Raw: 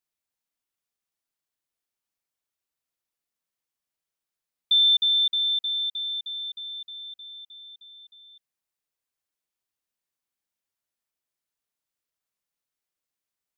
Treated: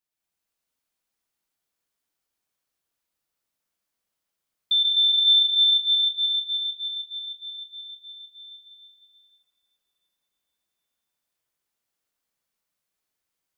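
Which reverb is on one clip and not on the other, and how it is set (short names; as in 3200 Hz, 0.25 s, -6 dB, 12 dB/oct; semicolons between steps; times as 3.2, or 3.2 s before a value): plate-style reverb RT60 4.5 s, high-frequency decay 0.7×, pre-delay 0.105 s, DRR -6.5 dB; gain -1.5 dB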